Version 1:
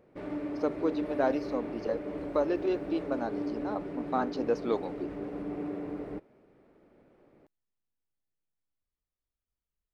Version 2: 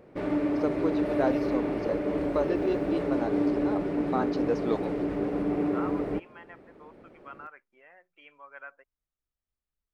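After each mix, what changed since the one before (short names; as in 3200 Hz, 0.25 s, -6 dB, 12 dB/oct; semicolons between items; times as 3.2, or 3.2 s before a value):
second voice: unmuted; background +8.5 dB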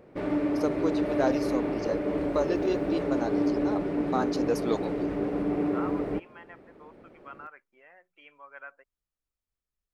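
first voice: remove air absorption 200 m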